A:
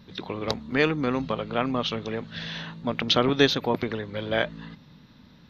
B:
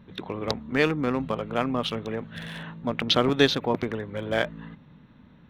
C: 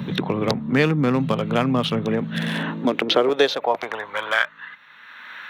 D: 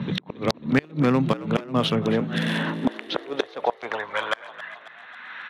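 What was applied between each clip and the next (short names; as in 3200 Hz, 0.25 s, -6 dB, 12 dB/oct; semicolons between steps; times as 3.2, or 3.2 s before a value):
Wiener smoothing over 9 samples
high-pass sweep 140 Hz -> 1600 Hz, 2.01–4.67; three-band squash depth 70%; gain +4 dB
flipped gate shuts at -8 dBFS, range -30 dB; low-pass opened by the level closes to 2600 Hz, open at -20 dBFS; frequency-shifting echo 0.271 s, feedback 63%, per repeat +57 Hz, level -16 dB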